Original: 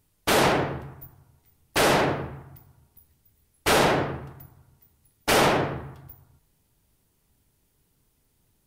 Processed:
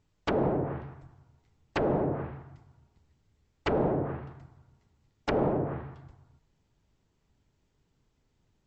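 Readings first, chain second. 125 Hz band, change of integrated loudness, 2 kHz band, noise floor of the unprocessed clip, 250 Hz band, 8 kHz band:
-2.5 dB, -8.0 dB, -15.0 dB, -69 dBFS, -3.0 dB, under -25 dB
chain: treble ducked by the level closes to 550 Hz, closed at -19.5 dBFS; brick-wall FIR low-pass 8000 Hz; high shelf 4400 Hz -8 dB; gain -2.5 dB

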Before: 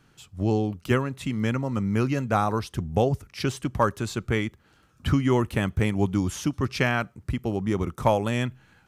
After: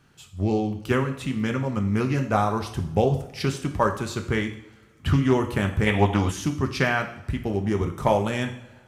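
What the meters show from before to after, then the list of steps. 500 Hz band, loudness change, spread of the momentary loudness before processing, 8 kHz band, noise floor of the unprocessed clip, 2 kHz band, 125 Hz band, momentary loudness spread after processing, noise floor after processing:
+2.0 dB, +1.5 dB, 6 LU, +0.5 dB, -61 dBFS, +2.5 dB, +1.0 dB, 8 LU, -54 dBFS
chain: two-slope reverb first 0.59 s, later 2.1 s, from -21 dB, DRR 4.5 dB; spectral gain 5.87–6.31, 430–3900 Hz +10 dB; Doppler distortion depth 0.19 ms

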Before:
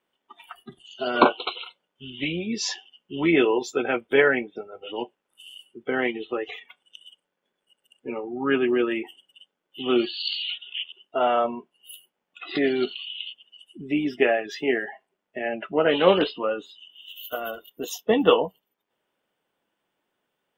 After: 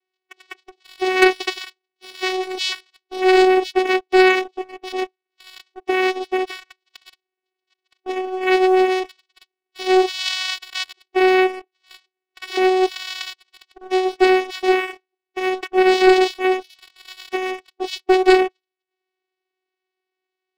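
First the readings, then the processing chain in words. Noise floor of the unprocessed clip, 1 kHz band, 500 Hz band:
-81 dBFS, +8.0 dB, +6.0 dB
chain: vocoder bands 4, saw 373 Hz; band shelf 3100 Hz +10 dB; sample leveller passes 2

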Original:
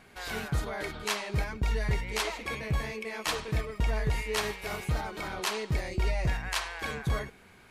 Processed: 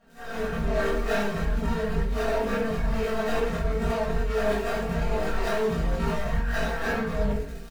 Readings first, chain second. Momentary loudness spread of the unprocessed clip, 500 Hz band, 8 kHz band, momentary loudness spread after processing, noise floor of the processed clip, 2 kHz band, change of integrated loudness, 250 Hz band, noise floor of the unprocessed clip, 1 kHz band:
5 LU, +10.0 dB, -5.0 dB, 2 LU, -37 dBFS, +2.5 dB, +4.5 dB, +9.5 dB, -56 dBFS, +5.0 dB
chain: median filter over 41 samples; crackle 28/s -41 dBFS; low shelf 290 Hz -11 dB; comb 4.4 ms, depth 85%; shoebox room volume 500 m³, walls furnished, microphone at 6.2 m; AGC gain up to 10 dB; chorus voices 4, 0.53 Hz, delay 20 ms, depth 3.1 ms; reverse; compressor, threshold -23 dBFS, peak gain reduction 12 dB; reverse; dynamic EQ 1500 Hz, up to +4 dB, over -48 dBFS, Q 1; on a send: reverse echo 30 ms -8.5 dB

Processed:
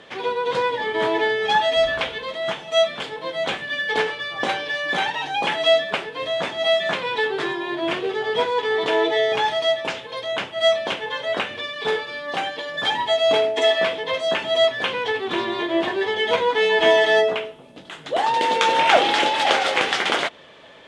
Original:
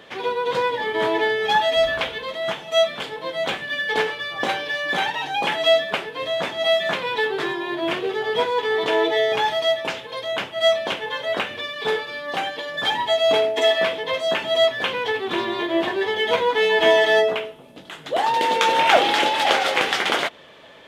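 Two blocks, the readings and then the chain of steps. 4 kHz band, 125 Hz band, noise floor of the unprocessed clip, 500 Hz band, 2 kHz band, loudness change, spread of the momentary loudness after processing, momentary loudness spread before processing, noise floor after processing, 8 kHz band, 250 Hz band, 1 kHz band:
0.0 dB, 0.0 dB, -43 dBFS, 0.0 dB, 0.0 dB, 0.0 dB, 9 LU, 9 LU, -43 dBFS, -0.5 dB, 0.0 dB, 0.0 dB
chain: LPF 9800 Hz 24 dB/oct

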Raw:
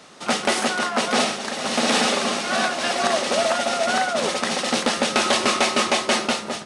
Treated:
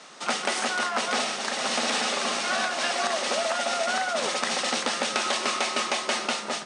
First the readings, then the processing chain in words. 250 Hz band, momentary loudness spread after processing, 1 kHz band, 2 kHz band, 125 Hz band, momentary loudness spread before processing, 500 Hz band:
-10.0 dB, 2 LU, -5.0 dB, -4.0 dB, -11.5 dB, 4 LU, -7.0 dB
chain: low shelf 380 Hz -10 dB; compressor, threshold -24 dBFS, peak gain reduction 8 dB; Chebyshev band-pass 140–9300 Hz, order 5; gain +1.5 dB

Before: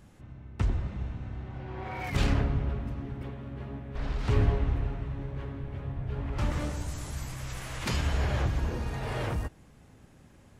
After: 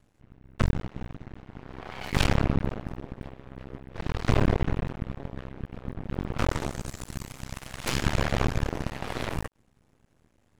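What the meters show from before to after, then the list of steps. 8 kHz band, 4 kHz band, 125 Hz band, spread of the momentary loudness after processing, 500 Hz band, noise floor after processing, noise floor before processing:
+3.5 dB, +4.5 dB, 0.0 dB, 17 LU, +3.5 dB, -66 dBFS, -56 dBFS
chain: added harmonics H 3 -24 dB, 5 -14 dB, 6 -7 dB, 7 -14 dB, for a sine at -12.5 dBFS; half-wave rectifier

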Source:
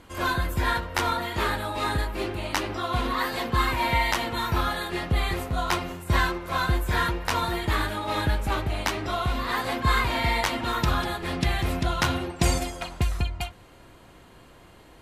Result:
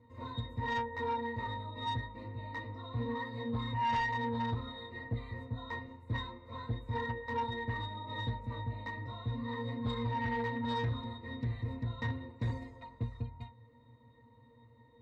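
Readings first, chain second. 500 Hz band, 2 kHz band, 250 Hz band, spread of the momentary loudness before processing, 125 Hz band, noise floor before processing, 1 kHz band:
-11.0 dB, -13.5 dB, -8.5 dB, 5 LU, -8.0 dB, -51 dBFS, -10.5 dB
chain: octave resonator A#, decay 0.22 s; added harmonics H 5 -13 dB, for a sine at -21 dBFS; gain -3 dB

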